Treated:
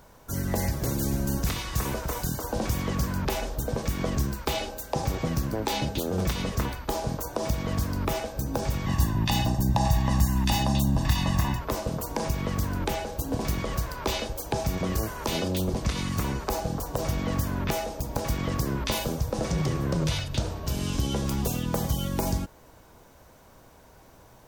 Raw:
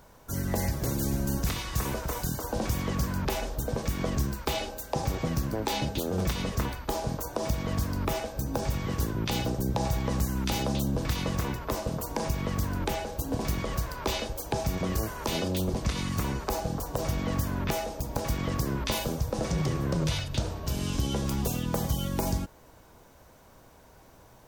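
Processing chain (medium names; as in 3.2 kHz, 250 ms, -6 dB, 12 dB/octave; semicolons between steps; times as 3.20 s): 8.86–11.61 s: comb 1.1 ms, depth 81%; trim +1.5 dB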